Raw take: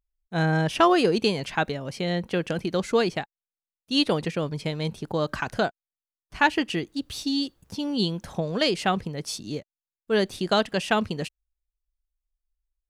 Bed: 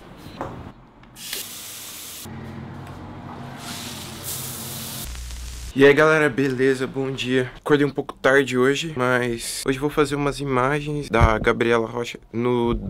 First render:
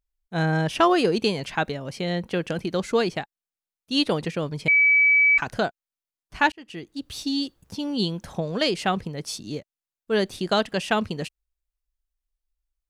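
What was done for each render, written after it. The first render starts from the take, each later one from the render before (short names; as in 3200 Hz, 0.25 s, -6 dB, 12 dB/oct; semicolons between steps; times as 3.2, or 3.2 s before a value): 4.68–5.38 bleep 2290 Hz -14 dBFS; 6.52–7.2 fade in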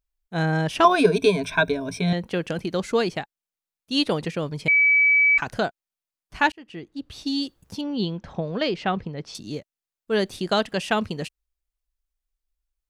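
0.84–2.13 ripple EQ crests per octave 1.6, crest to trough 18 dB; 6.58–7.26 LPF 2500 Hz 6 dB/oct; 7.81–9.35 air absorption 180 m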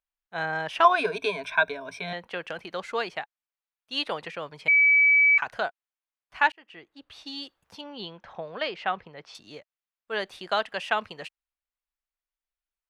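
three-band isolator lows -19 dB, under 600 Hz, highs -13 dB, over 3400 Hz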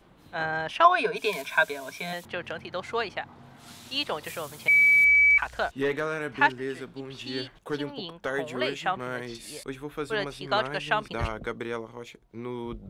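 add bed -14.5 dB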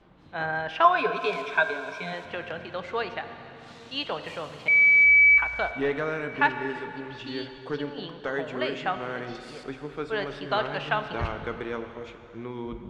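air absorption 130 m; plate-style reverb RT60 3.2 s, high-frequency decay 0.95×, DRR 8 dB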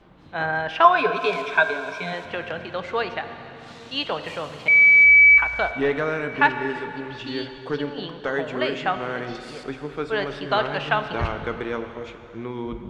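gain +4.5 dB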